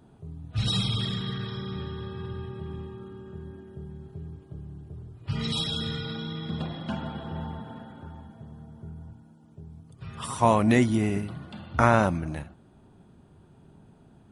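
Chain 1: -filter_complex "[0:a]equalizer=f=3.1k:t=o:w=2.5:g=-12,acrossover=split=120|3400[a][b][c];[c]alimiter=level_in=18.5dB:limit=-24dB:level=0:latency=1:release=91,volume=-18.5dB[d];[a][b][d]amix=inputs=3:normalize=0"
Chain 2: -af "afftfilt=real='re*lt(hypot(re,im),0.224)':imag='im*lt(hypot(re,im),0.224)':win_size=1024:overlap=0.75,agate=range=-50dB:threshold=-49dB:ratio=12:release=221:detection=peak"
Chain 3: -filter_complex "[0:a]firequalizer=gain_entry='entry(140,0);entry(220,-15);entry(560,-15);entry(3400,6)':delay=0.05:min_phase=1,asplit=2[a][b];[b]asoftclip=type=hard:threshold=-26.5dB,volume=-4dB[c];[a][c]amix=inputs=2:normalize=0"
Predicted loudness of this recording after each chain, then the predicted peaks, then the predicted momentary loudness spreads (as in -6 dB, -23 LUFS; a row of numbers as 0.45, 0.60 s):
-30.5, -35.5, -26.5 LUFS; -9.5, -13.0, -11.5 dBFS; 21, 14, 22 LU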